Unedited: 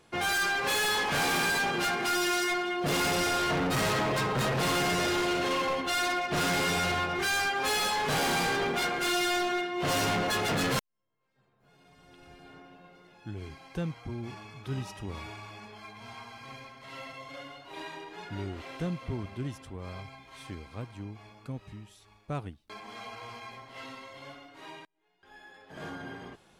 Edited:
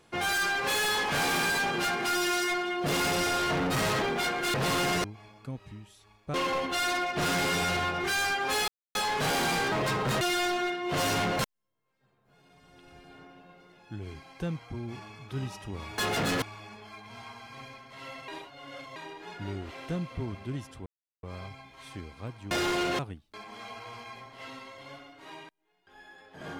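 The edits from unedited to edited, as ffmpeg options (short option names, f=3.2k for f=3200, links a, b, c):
-filter_complex "[0:a]asplit=16[a][b][c][d][e][f][g][h][i][j][k][l][m][n][o][p];[a]atrim=end=4.022[q];[b]atrim=start=8.598:end=9.122[r];[c]atrim=start=4.508:end=5.012[s];[d]atrim=start=21.048:end=22.352[t];[e]atrim=start=5.488:end=7.83,asetpts=PTS-STARTPTS,afade=t=out:st=2.338:d=0.004:c=hsin,apad=pad_dur=0.27[u];[f]atrim=start=7.83:end=8.602,asetpts=PTS-STARTPTS,afade=t=in:d=0.004:c=hsin[v];[g]atrim=start=4.018:end=4.512[w];[h]atrim=start=9.118:end=10.302[x];[i]atrim=start=10.738:end=15.332[y];[j]atrim=start=10.298:end=10.742[z];[k]atrim=start=15.328:end=17.192[aa];[l]atrim=start=17.188:end=17.872,asetpts=PTS-STARTPTS,areverse[ab];[m]atrim=start=17.868:end=19.77,asetpts=PTS-STARTPTS,afade=t=out:st=1.898:d=0.004:c=hsin,apad=pad_dur=0.37[ac];[n]atrim=start=19.77:end=21.052,asetpts=PTS-STARTPTS,afade=t=in:d=0.004:c=hsin[ad];[o]atrim=start=5.008:end=5.492[ae];[p]atrim=start=22.348[af];[q][r]acrossfade=d=0.004:c1=hsin:c2=hsin[ag];[ag][s]acrossfade=d=0.004:c1=hsin:c2=hsin[ah];[ah][t]acrossfade=d=0.004:c1=hsin:c2=hsin[ai];[u][v]concat=n=2:v=0:a=1[aj];[ai][aj]acrossfade=d=0.004:c1=hsin:c2=hsin[ak];[ak][w]acrossfade=d=0.004:c1=hsin:c2=hsin[al];[al][x]acrossfade=d=0.004:c1=hsin:c2=hsin[am];[am][y]acrossfade=d=0.004:c1=hsin:c2=hsin[an];[an][z]acrossfade=d=0.004:c1=hsin:c2=hsin[ao];[ao][aa]acrossfade=d=0.004:c1=hsin:c2=hsin[ap];[ap][ab]acrossfade=d=0.004:c1=hsin:c2=hsin[aq];[ac][ad]concat=n=2:v=0:a=1[ar];[aq][ar]acrossfade=d=0.004:c1=hsin:c2=hsin[as];[as][ae]acrossfade=d=0.004:c1=hsin:c2=hsin[at];[at][af]acrossfade=d=0.004:c1=hsin:c2=hsin"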